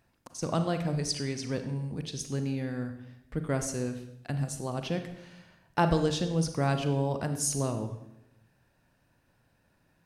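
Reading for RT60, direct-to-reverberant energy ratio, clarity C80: 0.85 s, 7.5 dB, 11.0 dB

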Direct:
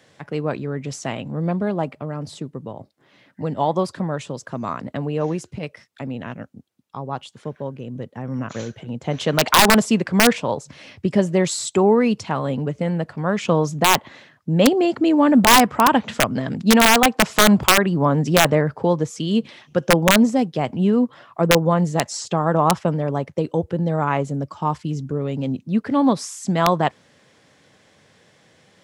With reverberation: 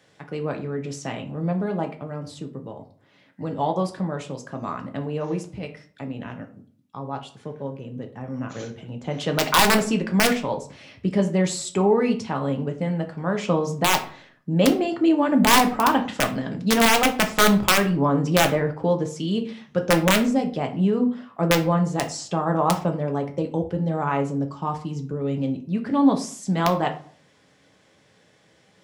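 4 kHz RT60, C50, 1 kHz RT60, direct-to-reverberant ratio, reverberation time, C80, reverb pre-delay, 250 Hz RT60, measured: 0.30 s, 12.5 dB, 0.45 s, 4.0 dB, 0.50 s, 17.0 dB, 3 ms, 0.55 s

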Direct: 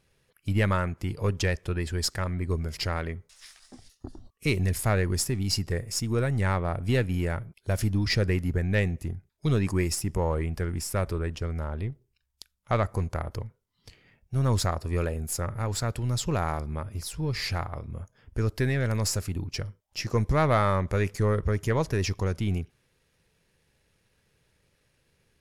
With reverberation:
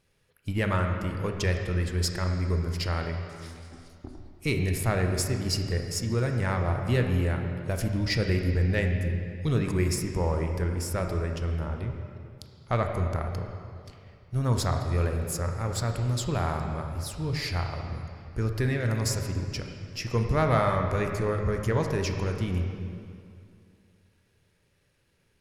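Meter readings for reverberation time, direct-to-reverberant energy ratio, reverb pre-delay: 2.4 s, 3.5 dB, 18 ms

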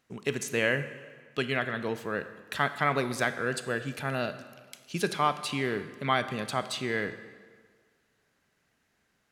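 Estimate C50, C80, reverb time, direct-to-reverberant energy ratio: 12.0 dB, 13.5 dB, 1.7 s, 11.0 dB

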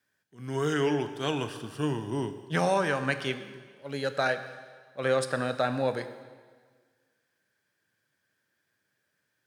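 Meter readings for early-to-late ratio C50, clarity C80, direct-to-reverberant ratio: 11.0 dB, 12.5 dB, 9.5 dB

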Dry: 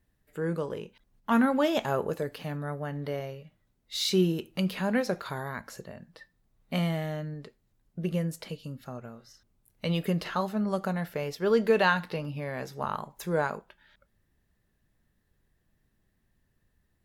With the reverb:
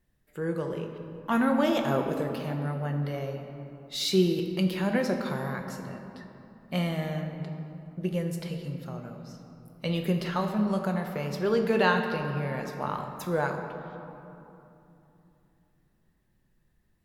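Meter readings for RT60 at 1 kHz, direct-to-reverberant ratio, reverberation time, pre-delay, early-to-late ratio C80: 2.9 s, 3.5 dB, 3.0 s, 5 ms, 6.5 dB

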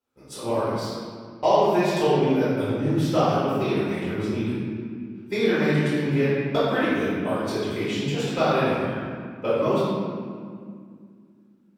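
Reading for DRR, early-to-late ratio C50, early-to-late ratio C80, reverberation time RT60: -13.5 dB, -3.5 dB, -1.0 dB, 2.1 s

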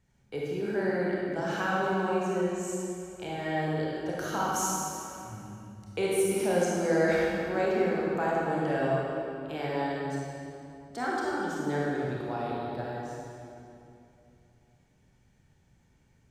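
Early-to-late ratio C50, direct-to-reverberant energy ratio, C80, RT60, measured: -3.5 dB, -5.5 dB, -1.5 dB, 2.7 s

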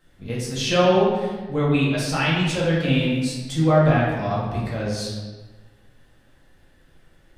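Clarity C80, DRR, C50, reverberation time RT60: 2.5 dB, -7.0 dB, 0.5 dB, 1.3 s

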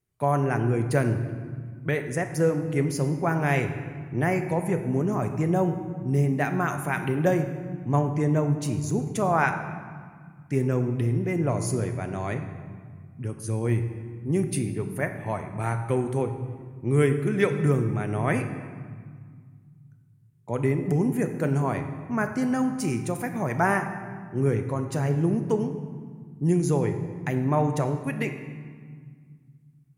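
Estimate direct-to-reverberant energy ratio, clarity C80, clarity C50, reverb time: 7.0 dB, 10.0 dB, 9.0 dB, 1.8 s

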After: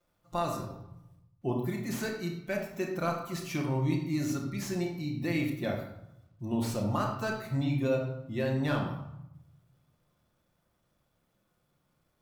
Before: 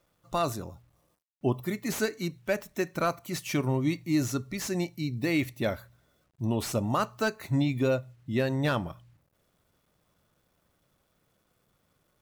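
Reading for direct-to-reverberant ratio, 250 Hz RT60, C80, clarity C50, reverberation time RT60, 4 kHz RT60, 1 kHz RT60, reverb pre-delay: -11.5 dB, 1.1 s, 7.0 dB, 4.5 dB, 0.80 s, 0.60 s, 0.85 s, 6 ms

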